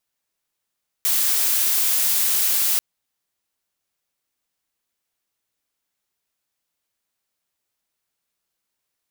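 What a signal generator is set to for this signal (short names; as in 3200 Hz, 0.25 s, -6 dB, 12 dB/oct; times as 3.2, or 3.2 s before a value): noise blue, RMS -19.5 dBFS 1.74 s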